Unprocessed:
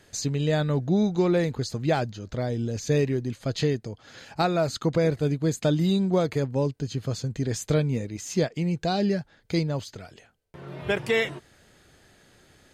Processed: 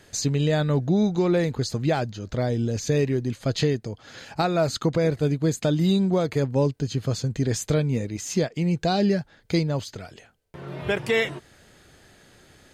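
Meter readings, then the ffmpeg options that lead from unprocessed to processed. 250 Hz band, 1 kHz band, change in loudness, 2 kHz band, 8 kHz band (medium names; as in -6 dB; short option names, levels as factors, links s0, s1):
+2.0 dB, +1.0 dB, +2.0 dB, +1.5 dB, +3.5 dB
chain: -af "alimiter=limit=0.158:level=0:latency=1:release=314,volume=1.5"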